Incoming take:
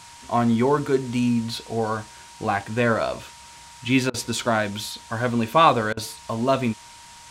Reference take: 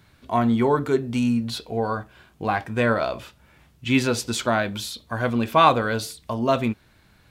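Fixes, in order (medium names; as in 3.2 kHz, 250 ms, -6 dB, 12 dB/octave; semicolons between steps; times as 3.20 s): band-stop 940 Hz, Q 30; interpolate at 4.10/5.93 s, 40 ms; noise print and reduce 12 dB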